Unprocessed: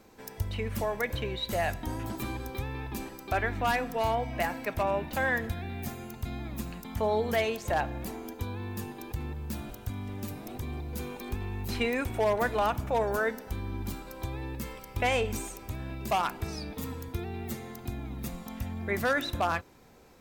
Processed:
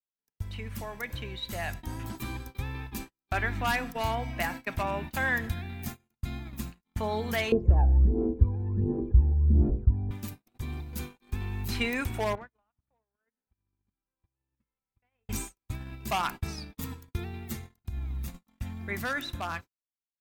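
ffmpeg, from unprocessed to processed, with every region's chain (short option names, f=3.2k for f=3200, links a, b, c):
-filter_complex "[0:a]asettb=1/sr,asplit=3[a][b][c];[a]atrim=end=7.524[d];[b]atrim=start=7.52:end=10.11,asetpts=PTS-STARTPTS,afade=t=in:d=0.004:c=qsin,afade=t=out:st=2.586:d=0.004:c=qsin,equalizer=f=63:t=o:w=0.51:g=12,aphaser=in_gain=1:out_gain=1:delay=1.3:decay=0.73:speed=1.4:type=sinusoidal,lowpass=f=440:t=q:w=3[e];[c]atrim=start=10.106[f];[d][e]acrossfade=d=0.004:c1=hsin:c2=qsin[g];[g][f]acrossfade=d=0.004:c1=qsin:c2=hsin,asettb=1/sr,asplit=3[h][i][j];[h]atrim=end=12.354[k];[i]atrim=start=12.35:end=15.29,asetpts=PTS-STARTPTS,afade=t=in:d=0.004:c=qsin,afade=t=out:st=2.936:d=0.004:c=qsin,lowpass=2.3k,acompressor=threshold=-38dB:ratio=12:attack=3.2:release=140:knee=1:detection=peak[l];[j]atrim=start=15.286[m];[k][l]acrossfade=d=0.004:c1=hsin:c2=qsin[n];[n][m]acrossfade=d=0.004:c1=qsin:c2=hsin,asettb=1/sr,asplit=3[o][p][q];[o]atrim=end=17.564[r];[p]atrim=start=17.56:end=18.28,asetpts=PTS-STARTPTS,afade=t=in:d=0.004:c=qsin,afade=t=out:st=0.716:d=0.004:c=qsin,lowshelf=f=120:t=q:w=1.5:g=9,acompressor=threshold=-31dB:ratio=16:attack=3.2:release=140:knee=1:detection=peak[s];[q]atrim=start=18.276[t];[r][s]acrossfade=d=0.004:c1=hsin:c2=qsin[u];[u][t]acrossfade=d=0.004:c1=qsin:c2=hsin,agate=range=-49dB:threshold=-36dB:ratio=16:detection=peak,equalizer=f=520:w=0.96:g=-8.5,dynaudnorm=f=310:g=13:m=6dB,volume=-3.5dB"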